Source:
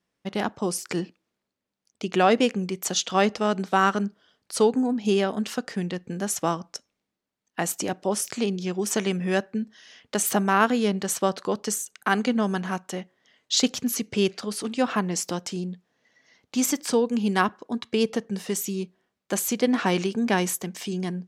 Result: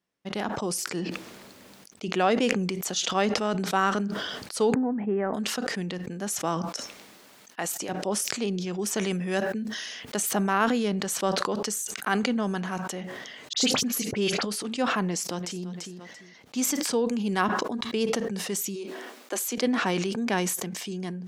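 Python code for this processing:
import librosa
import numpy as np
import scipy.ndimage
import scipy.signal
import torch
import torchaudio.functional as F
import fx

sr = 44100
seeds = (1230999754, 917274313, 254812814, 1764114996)

y = fx.ellip_lowpass(x, sr, hz=2000.0, order=4, stop_db=60, at=(4.74, 5.34))
y = fx.low_shelf(y, sr, hz=300.0, db=-9.5, at=(6.69, 7.89))
y = fx.high_shelf(y, sr, hz=9000.0, db=9.5, at=(9.01, 10.16))
y = fx.dispersion(y, sr, late='highs', ms=45.0, hz=2500.0, at=(13.53, 14.43))
y = fx.echo_throw(y, sr, start_s=15.01, length_s=0.64, ms=340, feedback_pct=20, wet_db=-15.5)
y = fx.steep_highpass(y, sr, hz=230.0, slope=72, at=(18.74, 19.61), fade=0.02)
y = fx.low_shelf(y, sr, hz=86.0, db=-7.0)
y = fx.sustainer(y, sr, db_per_s=27.0)
y = F.gain(torch.from_numpy(y), -4.0).numpy()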